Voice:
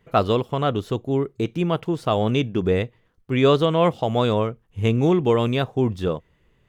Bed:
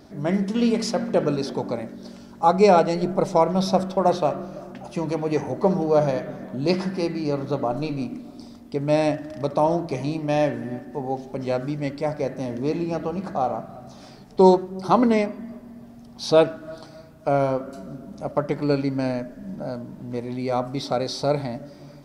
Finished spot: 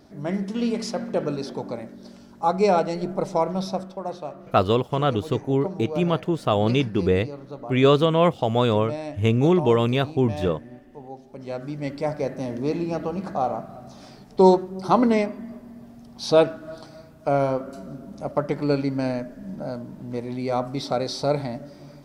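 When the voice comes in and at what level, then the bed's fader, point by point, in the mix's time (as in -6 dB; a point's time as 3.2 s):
4.40 s, 0.0 dB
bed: 3.53 s -4 dB
4.02 s -12 dB
11.21 s -12 dB
11.96 s -0.5 dB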